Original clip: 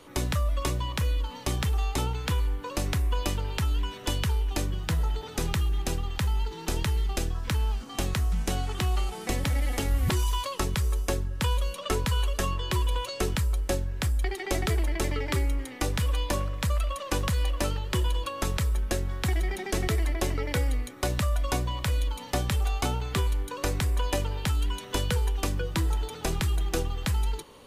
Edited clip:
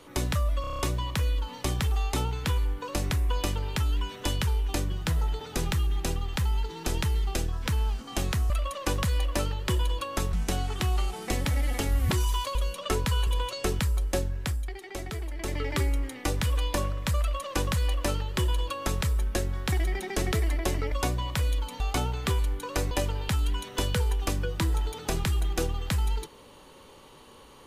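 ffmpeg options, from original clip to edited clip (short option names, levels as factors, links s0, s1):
-filter_complex "[0:a]asplit=16[s0][s1][s2][s3][s4][s5][s6][s7][s8][s9][s10][s11][s12][s13][s14][s15];[s0]atrim=end=0.642[s16];[s1]atrim=start=0.608:end=0.642[s17];[s2]atrim=start=0.608:end=0.642[s18];[s3]atrim=start=0.608:end=0.642[s19];[s4]atrim=start=0.608:end=0.642[s20];[s5]atrim=start=0.608:end=0.642[s21];[s6]atrim=start=0.608:end=8.322[s22];[s7]atrim=start=16.748:end=18.582[s23];[s8]atrim=start=8.318:end=10.542[s24];[s9]atrim=start=11.548:end=12.272[s25];[s10]atrim=start=12.828:end=14.26,asetpts=PTS-STARTPTS,afade=t=out:st=1.092:d=0.34:silence=0.375837[s26];[s11]atrim=start=14.26:end=14.9,asetpts=PTS-STARTPTS,volume=0.376[s27];[s12]atrim=start=14.9:end=20.482,asetpts=PTS-STARTPTS,afade=t=in:d=0.34:silence=0.375837[s28];[s13]atrim=start=21.408:end=22.292[s29];[s14]atrim=start=22.678:end=23.792[s30];[s15]atrim=start=24.068[s31];[s16][s17]acrossfade=d=0.004:c1=hsin:c2=hsin[s32];[s32][s18]acrossfade=d=0.004:c1=hsin:c2=hsin[s33];[s33][s19]acrossfade=d=0.004:c1=hsin:c2=hsin[s34];[s34][s20]acrossfade=d=0.004:c1=hsin:c2=hsin[s35];[s35][s21]acrossfade=d=0.004:c1=hsin:c2=hsin[s36];[s36][s22]acrossfade=d=0.004:c1=hsin:c2=hsin[s37];[s37][s23]acrossfade=d=0.004:c1=hsin:c2=hsin[s38];[s38][s24]acrossfade=d=0.004:c1=hsin:c2=hsin[s39];[s39][s25]acrossfade=d=0.004:c1=hsin:c2=hsin[s40];[s26][s27][s28]concat=n=3:v=0:a=1[s41];[s40][s41]acrossfade=d=0.004:c1=hsin:c2=hsin[s42];[s42][s29]acrossfade=d=0.004:c1=hsin:c2=hsin[s43];[s43][s30]acrossfade=d=0.004:c1=hsin:c2=hsin[s44];[s44][s31]acrossfade=d=0.004:c1=hsin:c2=hsin"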